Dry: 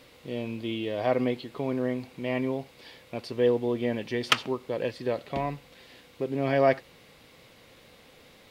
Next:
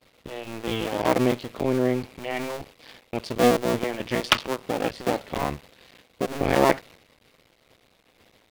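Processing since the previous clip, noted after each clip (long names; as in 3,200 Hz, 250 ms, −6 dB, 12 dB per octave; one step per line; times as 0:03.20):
sub-harmonics by changed cycles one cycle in 2, muted
downward expander −49 dBFS
level +6.5 dB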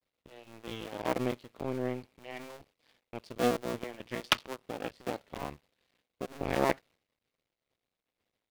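power curve on the samples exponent 1.4
level −5.5 dB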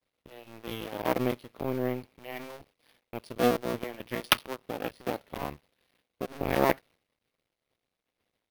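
bad sample-rate conversion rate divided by 3×, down filtered, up hold
level +3.5 dB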